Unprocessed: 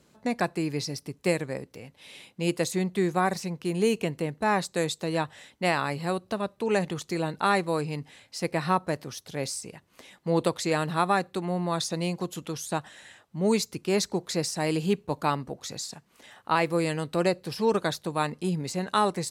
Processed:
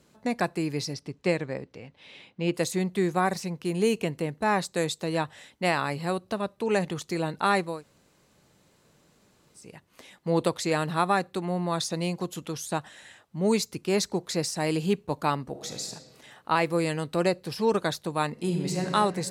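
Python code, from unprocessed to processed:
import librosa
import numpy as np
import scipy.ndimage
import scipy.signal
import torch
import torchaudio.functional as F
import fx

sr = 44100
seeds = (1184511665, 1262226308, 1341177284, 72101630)

y = fx.lowpass(x, sr, hz=fx.line((0.93, 6100.0), (2.53, 3400.0)), slope=12, at=(0.93, 2.53), fade=0.02)
y = fx.reverb_throw(y, sr, start_s=15.49, length_s=0.41, rt60_s=1.6, drr_db=5.0)
y = fx.reverb_throw(y, sr, start_s=18.31, length_s=0.59, rt60_s=2.4, drr_db=1.5)
y = fx.edit(y, sr, fx.room_tone_fill(start_s=7.72, length_s=1.94, crossfade_s=0.24), tone=tone)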